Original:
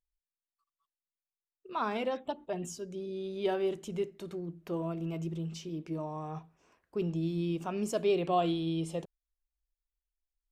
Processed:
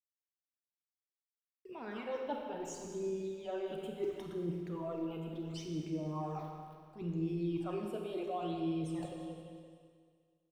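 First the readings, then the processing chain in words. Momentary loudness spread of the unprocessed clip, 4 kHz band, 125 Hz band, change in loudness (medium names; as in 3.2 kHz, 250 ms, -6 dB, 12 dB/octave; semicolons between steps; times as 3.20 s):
11 LU, -7.5 dB, -4.0 dB, -5.0 dB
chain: small samples zeroed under -58 dBFS; peaking EQ 190 Hz -9.5 dB 0.32 oct; feedback delay 172 ms, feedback 56%, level -18 dB; reverse; compression 5:1, threshold -45 dBFS, peak gain reduction 18.5 dB; reverse; phase shifter stages 12, 0.72 Hz, lowest notch 100–1300 Hz; treble shelf 2.8 kHz -8.5 dB; Schroeder reverb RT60 1.9 s, combs from 31 ms, DRR 2 dB; trim +9.5 dB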